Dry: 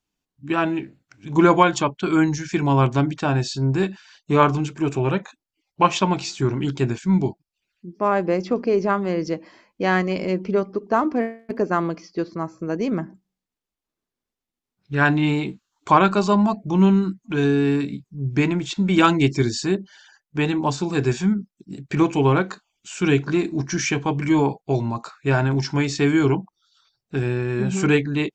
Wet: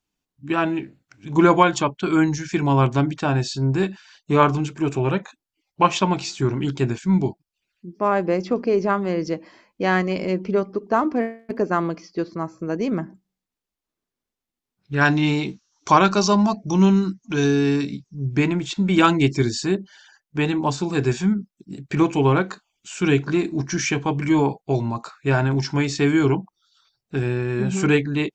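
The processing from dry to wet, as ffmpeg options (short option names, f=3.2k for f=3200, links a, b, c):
-filter_complex "[0:a]asettb=1/sr,asplit=3[a][b][c];[a]atrim=end=15.014[d];[b]atrim=start=15.01:end=18.26,asetpts=PTS-STARTPTS,afade=t=in:d=0.004:c=qsin,afade=t=out:st=3.246:d=0.004:c=qsin,lowpass=f=5.8k:t=q:w=8.1[e];[c]atrim=start=18.256[f];[d][e]acrossfade=d=0.004:c1=hsin:c2=qsin[g];[g][f]acrossfade=d=0.004:c1=qsin:c2=hsin"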